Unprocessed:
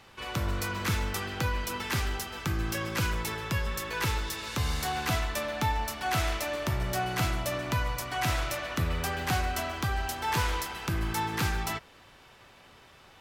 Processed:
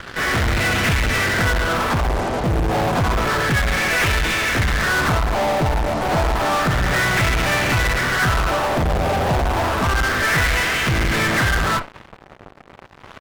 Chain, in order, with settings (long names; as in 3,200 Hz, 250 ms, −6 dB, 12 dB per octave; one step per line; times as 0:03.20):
lower of the sound and its delayed copy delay 0.58 ms
pitch-shifted copies added −12 semitones −12 dB, −5 semitones −9 dB, +5 semitones −5 dB
auto-filter low-pass sine 0.3 Hz 750–2,500 Hz
dynamic equaliser 660 Hz, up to +5 dB, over −47 dBFS, Q 2.2
in parallel at −7 dB: fuzz pedal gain 46 dB, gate −52 dBFS